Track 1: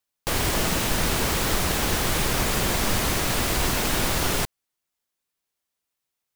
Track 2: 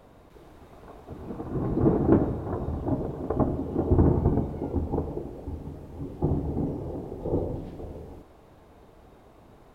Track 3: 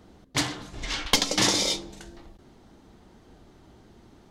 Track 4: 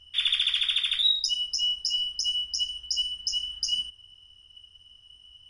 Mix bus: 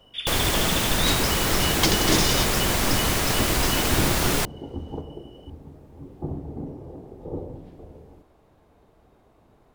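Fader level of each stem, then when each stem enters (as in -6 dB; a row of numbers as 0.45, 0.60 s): +1.0, -5.5, -2.0, -6.0 dB; 0.00, 0.00, 0.70, 0.00 s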